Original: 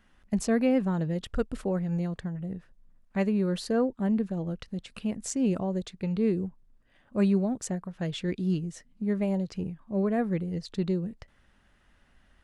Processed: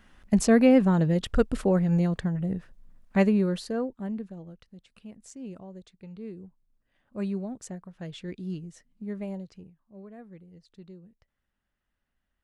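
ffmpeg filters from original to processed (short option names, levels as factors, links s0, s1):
-af "volume=4.47,afade=t=out:st=3.18:d=0.46:silence=0.354813,afade=t=out:st=3.64:d=0.94:silence=0.281838,afade=t=in:st=6.36:d=0.89:silence=0.446684,afade=t=out:st=9.29:d=0.43:silence=0.251189"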